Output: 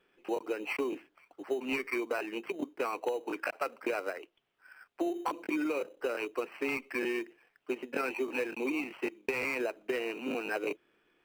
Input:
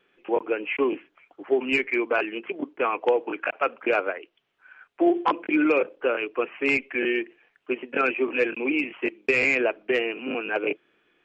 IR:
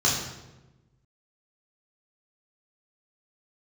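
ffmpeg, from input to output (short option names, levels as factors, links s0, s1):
-filter_complex "[0:a]asplit=2[s0][s1];[s1]acrusher=samples=13:mix=1:aa=0.000001,volume=0.316[s2];[s0][s2]amix=inputs=2:normalize=0,acompressor=threshold=0.0708:ratio=10,volume=0.501"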